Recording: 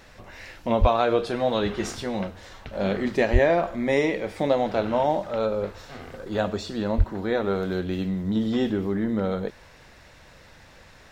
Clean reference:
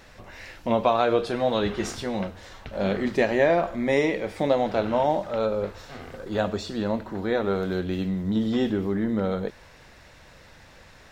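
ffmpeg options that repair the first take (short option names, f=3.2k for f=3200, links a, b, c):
-filter_complex "[0:a]asplit=3[a][b][c];[a]afade=t=out:st=0.8:d=0.02[d];[b]highpass=f=140:w=0.5412,highpass=f=140:w=1.3066,afade=t=in:st=0.8:d=0.02,afade=t=out:st=0.92:d=0.02[e];[c]afade=t=in:st=0.92:d=0.02[f];[d][e][f]amix=inputs=3:normalize=0,asplit=3[g][h][i];[g]afade=t=out:st=3.32:d=0.02[j];[h]highpass=f=140:w=0.5412,highpass=f=140:w=1.3066,afade=t=in:st=3.32:d=0.02,afade=t=out:st=3.44:d=0.02[k];[i]afade=t=in:st=3.44:d=0.02[l];[j][k][l]amix=inputs=3:normalize=0,asplit=3[m][n][o];[m]afade=t=out:st=6.97:d=0.02[p];[n]highpass=f=140:w=0.5412,highpass=f=140:w=1.3066,afade=t=in:st=6.97:d=0.02,afade=t=out:st=7.09:d=0.02[q];[o]afade=t=in:st=7.09:d=0.02[r];[p][q][r]amix=inputs=3:normalize=0"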